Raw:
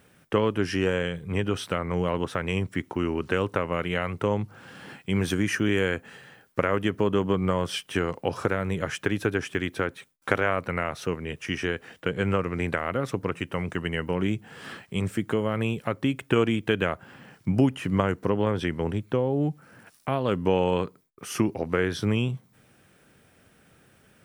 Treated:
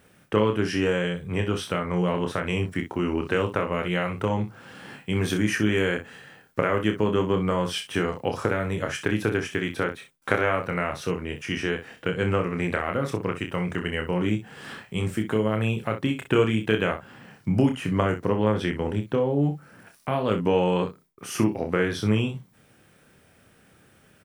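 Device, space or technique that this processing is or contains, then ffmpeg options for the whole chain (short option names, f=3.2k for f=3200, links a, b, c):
slapback doubling: -filter_complex "[0:a]asplit=3[a][b][c];[b]adelay=28,volume=-5.5dB[d];[c]adelay=62,volume=-10.5dB[e];[a][d][e]amix=inputs=3:normalize=0"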